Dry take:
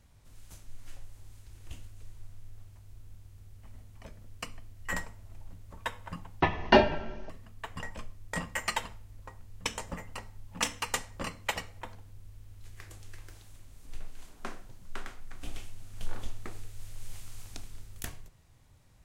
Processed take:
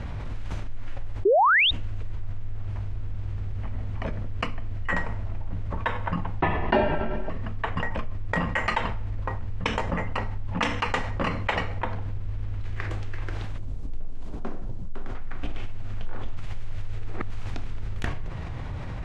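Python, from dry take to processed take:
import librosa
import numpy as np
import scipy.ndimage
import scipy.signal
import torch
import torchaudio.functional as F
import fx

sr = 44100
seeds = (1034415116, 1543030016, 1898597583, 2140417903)

y = fx.spec_paint(x, sr, seeds[0], shape='rise', start_s=1.25, length_s=0.46, low_hz=360.0, high_hz=3900.0, level_db=-13.0)
y = fx.peak_eq(y, sr, hz=1900.0, db=-14.5, octaves=2.5, at=(13.58, 15.15))
y = fx.edit(y, sr, fx.reverse_span(start_s=16.37, length_s=0.93), tone=tone)
y = scipy.signal.sosfilt(scipy.signal.butter(2, 2300.0, 'lowpass', fs=sr, output='sos'), y)
y = fx.env_flatten(y, sr, amount_pct=70)
y = F.gain(torch.from_numpy(y), -5.0).numpy()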